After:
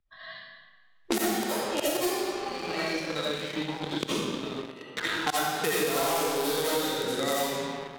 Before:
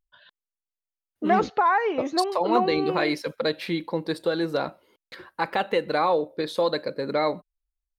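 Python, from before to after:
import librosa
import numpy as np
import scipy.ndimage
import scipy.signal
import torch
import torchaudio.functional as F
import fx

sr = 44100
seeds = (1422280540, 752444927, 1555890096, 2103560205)

p1 = fx.doppler_pass(x, sr, speed_mps=33, closest_m=8.7, pass_at_s=3.05)
p2 = fx.gate_flip(p1, sr, shuts_db=-31.0, range_db=-31)
p3 = fx.bass_treble(p2, sr, bass_db=15, treble_db=-3)
p4 = fx.quant_dither(p3, sr, seeds[0], bits=6, dither='none')
p5 = p3 + F.gain(torch.from_numpy(p4), -5.0).numpy()
p6 = fx.riaa(p5, sr, side='recording')
p7 = fx.rev_freeverb(p6, sr, rt60_s=1.4, hf_ratio=0.85, predelay_ms=45, drr_db=-9.0)
p8 = fx.hpss(p7, sr, part='percussive', gain_db=-7)
p9 = fx.env_lowpass(p8, sr, base_hz=2500.0, full_db=-36.5)
p10 = fx.leveller(p9, sr, passes=2)
p11 = fx.band_squash(p10, sr, depth_pct=100)
y = F.gain(torch.from_numpy(p11), 2.5).numpy()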